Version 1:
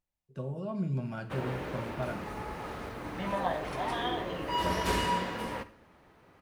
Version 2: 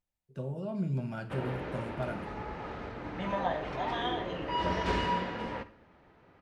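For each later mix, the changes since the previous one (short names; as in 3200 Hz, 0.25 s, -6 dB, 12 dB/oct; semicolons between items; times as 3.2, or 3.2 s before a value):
background: add air absorption 150 m; master: add notch 1100 Hz, Q 19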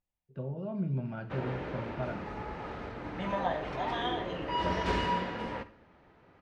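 first voice: add air absorption 330 m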